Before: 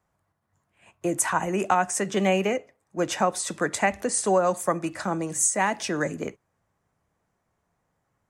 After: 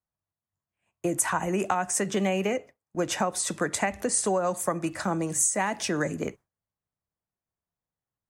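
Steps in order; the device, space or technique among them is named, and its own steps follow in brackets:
noise gate with hold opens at −39 dBFS
ASMR close-microphone chain (low-shelf EQ 140 Hz +5 dB; downward compressor, threshold −22 dBFS, peak gain reduction 6 dB; high-shelf EQ 11,000 Hz +6.5 dB)

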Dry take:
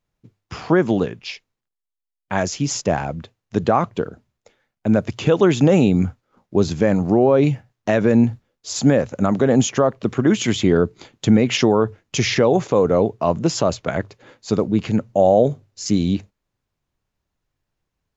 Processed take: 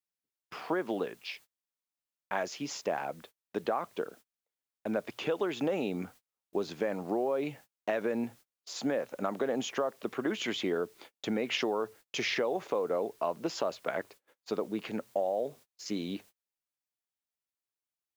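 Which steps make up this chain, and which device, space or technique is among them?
baby monitor (band-pass filter 390–4,100 Hz; downward compressor 10 to 1, threshold −19 dBFS, peak gain reduction 9 dB; white noise bed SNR 29 dB; noise gate −44 dBFS, range −32 dB)
level −7.5 dB

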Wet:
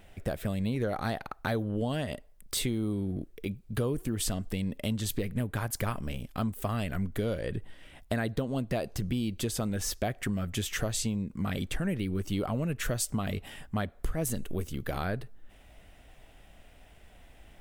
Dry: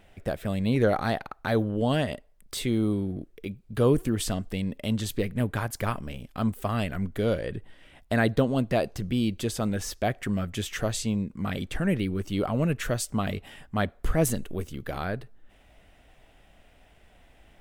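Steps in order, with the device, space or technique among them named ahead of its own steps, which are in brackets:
ASMR close-microphone chain (low-shelf EQ 150 Hz +3.5 dB; downward compressor 6 to 1, threshold −27 dBFS, peak gain reduction 12 dB; high-shelf EQ 6,600 Hz +6 dB)

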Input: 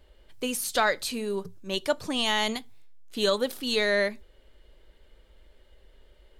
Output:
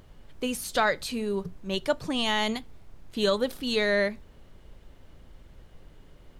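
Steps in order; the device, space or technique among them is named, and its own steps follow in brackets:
car interior (parametric band 150 Hz +8 dB 0.73 octaves; high-shelf EQ 4,900 Hz −6 dB; brown noise bed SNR 19 dB)

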